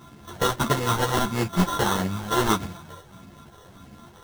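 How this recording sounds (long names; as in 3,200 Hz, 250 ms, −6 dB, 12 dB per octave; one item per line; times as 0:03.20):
a buzz of ramps at a fixed pitch in blocks of 32 samples
phaser sweep stages 6, 1.6 Hz, lowest notch 240–1,000 Hz
aliases and images of a low sample rate 2,400 Hz, jitter 0%
a shimmering, thickened sound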